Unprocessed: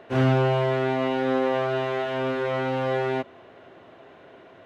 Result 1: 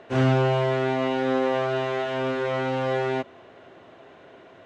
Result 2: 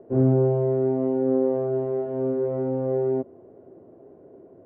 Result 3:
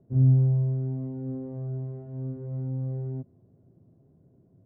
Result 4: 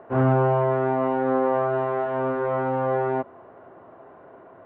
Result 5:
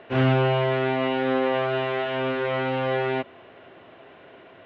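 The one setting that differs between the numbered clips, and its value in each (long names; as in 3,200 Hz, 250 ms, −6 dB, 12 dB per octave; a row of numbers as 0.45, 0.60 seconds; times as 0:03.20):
low-pass with resonance, frequency: 7,700, 410, 150, 1,100, 3,000 Hertz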